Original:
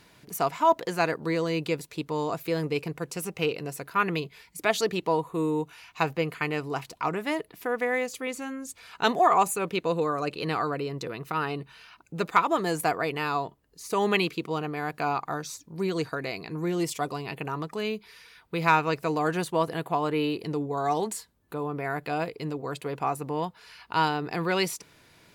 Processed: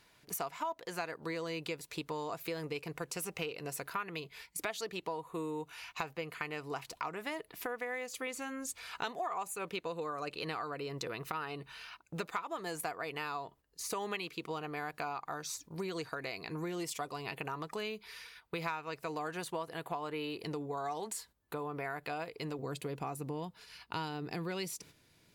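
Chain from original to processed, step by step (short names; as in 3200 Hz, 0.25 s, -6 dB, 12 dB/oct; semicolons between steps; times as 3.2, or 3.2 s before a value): bell 190 Hz -7 dB 2.6 oct, from 22.59 s 1100 Hz; gate -52 dBFS, range -9 dB; compressor 6:1, threshold -38 dBFS, peak gain reduction 20 dB; gain +2 dB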